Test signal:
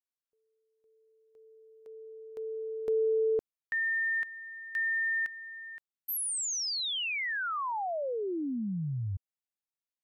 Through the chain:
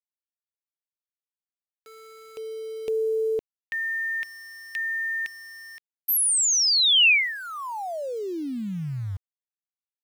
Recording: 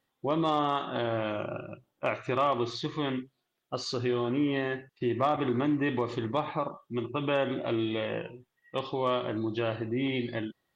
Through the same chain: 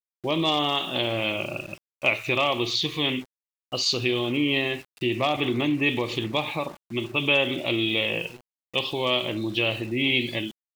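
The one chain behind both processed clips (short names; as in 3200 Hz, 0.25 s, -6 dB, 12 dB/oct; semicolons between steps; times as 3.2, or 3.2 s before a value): resonant high shelf 2000 Hz +8 dB, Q 3; sample gate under -45.5 dBFS; gain +3 dB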